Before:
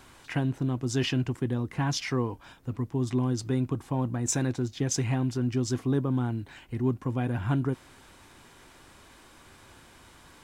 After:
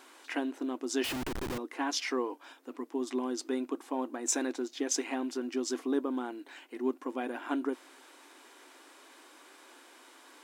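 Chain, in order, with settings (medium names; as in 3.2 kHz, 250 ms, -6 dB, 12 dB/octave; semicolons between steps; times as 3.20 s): brick-wall FIR high-pass 250 Hz; 1.04–1.58 s: Schmitt trigger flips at -44.5 dBFS; trim -1 dB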